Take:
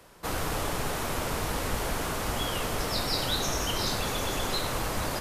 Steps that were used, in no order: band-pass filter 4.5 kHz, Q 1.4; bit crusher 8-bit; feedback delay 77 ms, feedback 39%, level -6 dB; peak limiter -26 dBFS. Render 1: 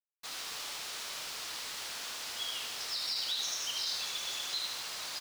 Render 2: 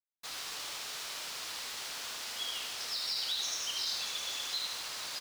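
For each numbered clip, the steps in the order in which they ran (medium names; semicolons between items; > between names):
band-pass filter > bit crusher > peak limiter > feedback delay; band-pass filter > peak limiter > feedback delay > bit crusher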